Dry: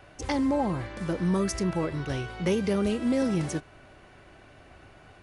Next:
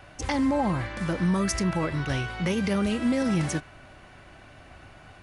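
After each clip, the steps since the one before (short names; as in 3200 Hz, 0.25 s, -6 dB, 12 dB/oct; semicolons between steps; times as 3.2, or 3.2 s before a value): dynamic EQ 1900 Hz, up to +3 dB, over -48 dBFS, Q 0.97; limiter -20 dBFS, peak gain reduction 5 dB; bell 410 Hz -6 dB 0.74 oct; gain +4 dB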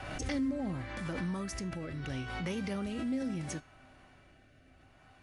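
rotary speaker horn 0.7 Hz; resonator 260 Hz, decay 0.37 s, harmonics odd, mix 70%; backwards sustainer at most 35 dB/s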